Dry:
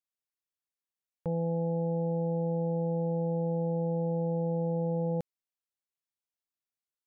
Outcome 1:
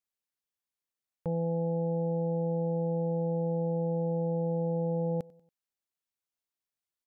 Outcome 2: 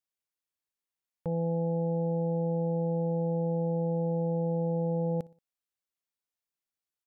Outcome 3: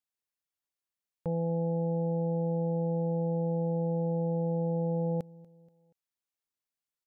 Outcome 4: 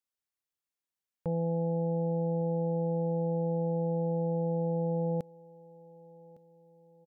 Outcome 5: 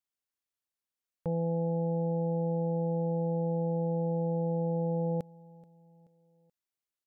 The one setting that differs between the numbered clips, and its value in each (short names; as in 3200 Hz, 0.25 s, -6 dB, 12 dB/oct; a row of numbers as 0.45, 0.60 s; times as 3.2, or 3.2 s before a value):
feedback echo, time: 94, 60, 239, 1158, 430 ms